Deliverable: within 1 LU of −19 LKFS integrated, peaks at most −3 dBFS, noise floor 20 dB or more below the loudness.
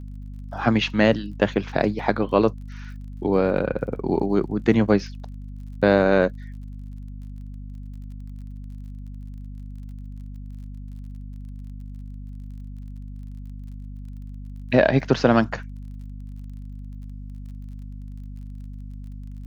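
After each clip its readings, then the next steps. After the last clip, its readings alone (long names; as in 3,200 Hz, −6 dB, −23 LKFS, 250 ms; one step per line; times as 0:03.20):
crackle rate 34 per second; mains hum 50 Hz; hum harmonics up to 250 Hz; level of the hum −33 dBFS; integrated loudness −21.5 LKFS; sample peak −2.0 dBFS; target loudness −19.0 LKFS
→ click removal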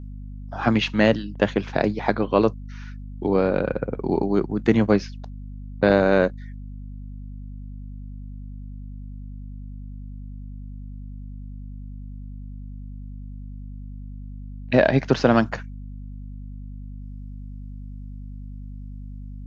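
crackle rate 0 per second; mains hum 50 Hz; hum harmonics up to 250 Hz; level of the hum −33 dBFS
→ hum removal 50 Hz, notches 5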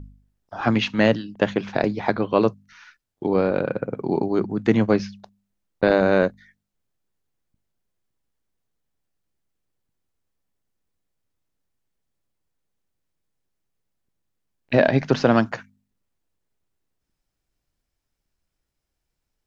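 mains hum none found; integrated loudness −21.5 LKFS; sample peak −2.5 dBFS; target loudness −19.0 LKFS
→ level +2.5 dB
brickwall limiter −3 dBFS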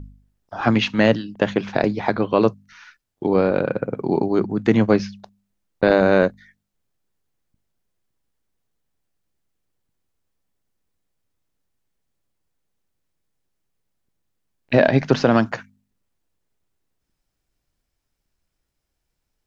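integrated loudness −19.5 LKFS; sample peak −3.0 dBFS; background noise floor −78 dBFS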